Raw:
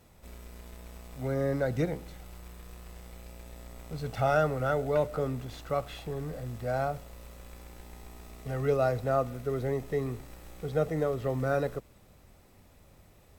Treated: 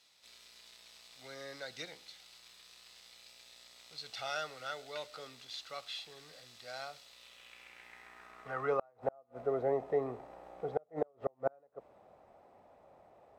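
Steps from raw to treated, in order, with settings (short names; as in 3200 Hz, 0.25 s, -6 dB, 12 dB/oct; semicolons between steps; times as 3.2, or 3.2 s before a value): band-pass sweep 4200 Hz -> 710 Hz, 7.03–9.21; flipped gate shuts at -27 dBFS, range -37 dB; gain +8 dB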